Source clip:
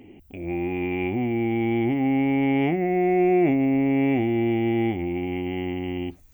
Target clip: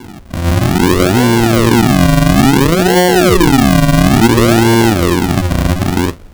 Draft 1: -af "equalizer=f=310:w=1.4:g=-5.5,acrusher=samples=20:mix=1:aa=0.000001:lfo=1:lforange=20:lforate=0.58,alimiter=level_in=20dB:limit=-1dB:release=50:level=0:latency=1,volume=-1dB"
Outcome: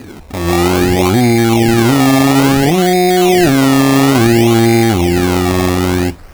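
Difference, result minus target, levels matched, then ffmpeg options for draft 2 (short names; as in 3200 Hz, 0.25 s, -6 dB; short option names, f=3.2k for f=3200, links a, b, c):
decimation with a swept rate: distortion -16 dB
-af "equalizer=f=310:w=1.4:g=-5.5,acrusher=samples=69:mix=1:aa=0.000001:lfo=1:lforange=69:lforate=0.58,alimiter=level_in=20dB:limit=-1dB:release=50:level=0:latency=1,volume=-1dB"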